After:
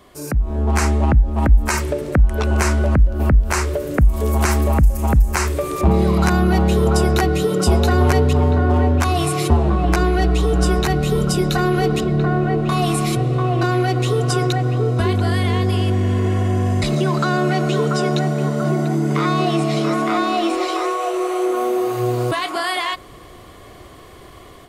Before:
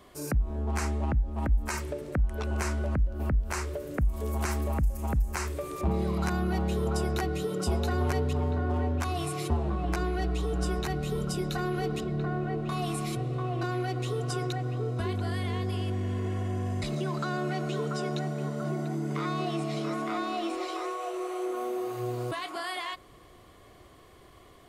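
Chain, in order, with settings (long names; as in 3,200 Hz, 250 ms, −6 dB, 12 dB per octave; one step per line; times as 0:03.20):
automatic gain control gain up to 7.5 dB
level +5.5 dB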